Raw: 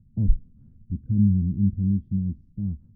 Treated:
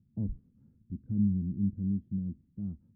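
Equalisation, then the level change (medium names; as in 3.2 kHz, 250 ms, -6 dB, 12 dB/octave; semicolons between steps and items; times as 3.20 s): high-pass 360 Hz 6 dB/octave; distance through air 400 m; 0.0 dB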